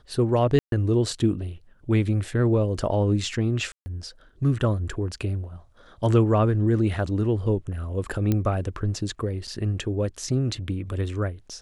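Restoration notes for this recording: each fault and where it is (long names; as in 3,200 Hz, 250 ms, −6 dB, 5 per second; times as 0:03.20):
0:00.59–0:00.72: drop-out 132 ms
0:03.72–0:03.86: drop-out 140 ms
0:08.32: click −11 dBFS
0:09.47–0:09.48: drop-out 6.4 ms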